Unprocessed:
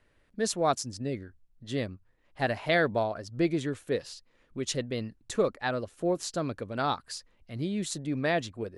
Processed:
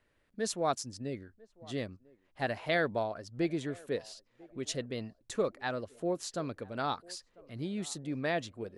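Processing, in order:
low-shelf EQ 82 Hz −5.5 dB
on a send: feedback echo with a band-pass in the loop 997 ms, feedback 48%, band-pass 550 Hz, level −22 dB
on the sum: level −4.5 dB

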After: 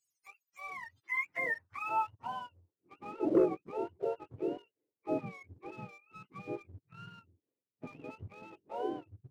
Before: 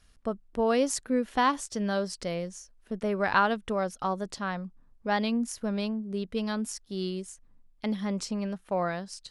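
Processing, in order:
frequency axis turned over on the octave scale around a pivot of 720 Hz
band-pass filter sweep 6,500 Hz → 380 Hz, 0:00.47–0:02.82
leveller curve on the samples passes 1
level −1.5 dB

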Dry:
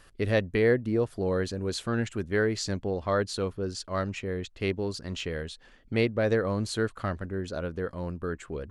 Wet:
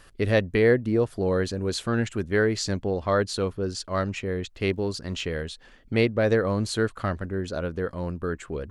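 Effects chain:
0:04.54–0:05.41: surface crackle 66 per second −58 dBFS
level +3.5 dB

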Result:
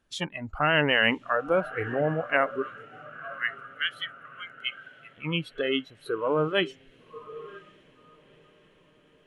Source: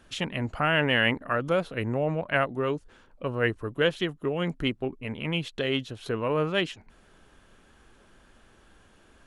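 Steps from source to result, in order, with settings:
0:02.62–0:05.17: inverse Chebyshev high-pass filter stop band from 550 Hz, stop band 50 dB
feedback delay with all-pass diffusion 1,006 ms, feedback 60%, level −11 dB
noise reduction from a noise print of the clip's start 17 dB
level +1.5 dB

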